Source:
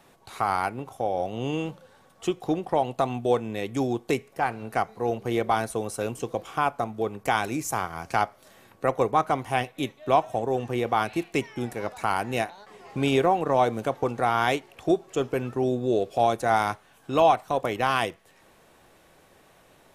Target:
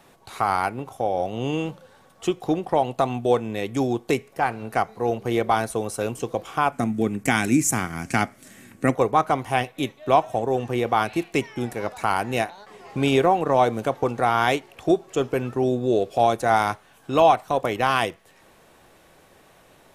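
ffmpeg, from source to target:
-filter_complex "[0:a]asettb=1/sr,asplit=3[s0][s1][s2];[s0]atrim=end=6.724[s3];[s1]atrim=start=6.72:end=8.95,asetpts=PTS-STARTPTS,afade=t=in:d=0.004:c=qsin,afade=t=out:st=2.226:d=0.004:c=qsin,equalizer=f=125:t=o:w=1:g=4,equalizer=f=250:t=o:w=1:g=12,equalizer=f=500:t=o:w=1:g=-5,equalizer=f=1000:t=o:w=1:g=-7,equalizer=f=2000:t=o:w=1:g=7,equalizer=f=4000:t=o:w=1:g=-4,equalizer=f=8000:t=o:w=1:g=10[s4];[s2]atrim=start=8.946[s5];[s3][s4]acrossfade=d=0.004:c1=hsin:c2=qsin[s6];[s6][s5]acrossfade=d=0.004:c1=qsin:c2=hsin,volume=1.41"

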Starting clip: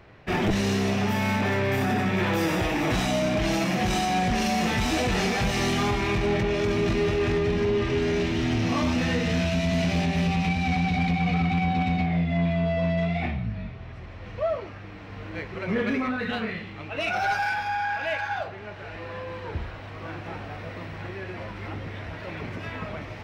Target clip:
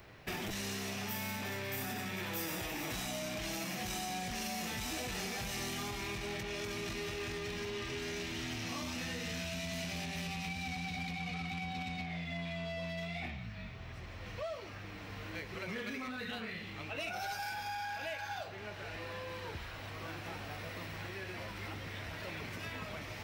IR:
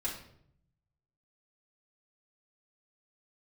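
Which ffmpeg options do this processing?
-filter_complex "[0:a]acrossover=split=820|2800[s0][s1][s2];[s0]acompressor=threshold=0.0126:ratio=4[s3];[s1]acompressor=threshold=0.00708:ratio=4[s4];[s2]acompressor=threshold=0.00398:ratio=4[s5];[s3][s4][s5]amix=inputs=3:normalize=0,aemphasis=mode=production:type=75fm,volume=0.596"

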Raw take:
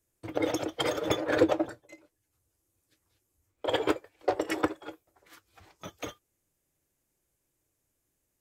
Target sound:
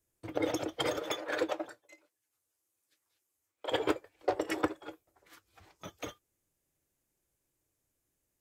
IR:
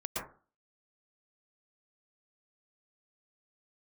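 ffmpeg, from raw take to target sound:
-filter_complex "[0:a]asettb=1/sr,asplit=3[s0][s1][s2];[s0]atrim=end=1.024[s3];[s1]atrim=start=1.02:end=3.72,asetpts=PTS-STARTPTS,afade=t=in:d=0.004:c=qsin,afade=t=out:st=2.696:d=0.004:c=qsin,highpass=f=840:p=1[s4];[s2]atrim=start=3.716[s5];[s3][s4]acrossfade=d=0.004:c1=hsin:c2=qsin[s6];[s6][s5]acrossfade=d=0.004:c1=qsin:c2=hsin,volume=0.708"

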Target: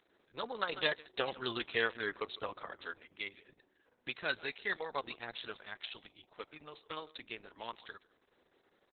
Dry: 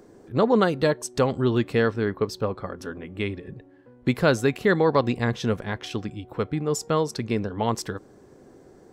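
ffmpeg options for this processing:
-filter_complex "[0:a]aderivative,aecho=1:1:147:0.0944,asettb=1/sr,asplit=3[s0][s1][s2];[s0]atrim=end=0.694[s3];[s1]atrim=start=0.69:end=3,asetpts=PTS-STARTPTS,afade=t=in:d=0.004:c=qsin,afade=t=out:st=2.306:d=0.004:c=qsin,acontrast=84[s4];[s2]atrim=start=2.996[s5];[s3][s4]acrossfade=d=0.004:c1=hsin:c2=qsin[s6];[s6][s5]acrossfade=d=0.004:c1=qsin:c2=hsin,volume=1.41" -ar 48000 -c:a libopus -b:a 6k

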